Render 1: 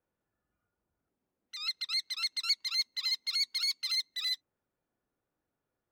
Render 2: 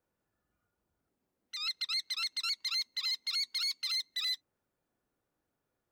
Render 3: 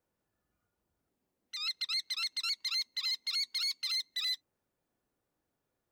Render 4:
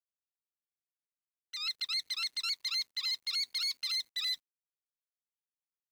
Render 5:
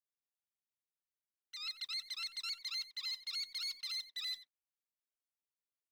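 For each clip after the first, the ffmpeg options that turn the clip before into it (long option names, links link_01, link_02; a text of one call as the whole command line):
ffmpeg -i in.wav -af "alimiter=level_in=4.5dB:limit=-24dB:level=0:latency=1:release=14,volume=-4.5dB,volume=2dB" out.wav
ffmpeg -i in.wav -af "equalizer=frequency=1400:width_type=o:width=0.39:gain=-2.5" out.wav
ffmpeg -i in.wav -af "acrusher=bits=10:mix=0:aa=0.000001" out.wav
ffmpeg -i in.wav -filter_complex "[0:a]asplit=2[link_01][link_02];[link_02]adelay=90,highpass=300,lowpass=3400,asoftclip=type=hard:threshold=-35dB,volume=-11dB[link_03];[link_01][link_03]amix=inputs=2:normalize=0,volume=-7dB" out.wav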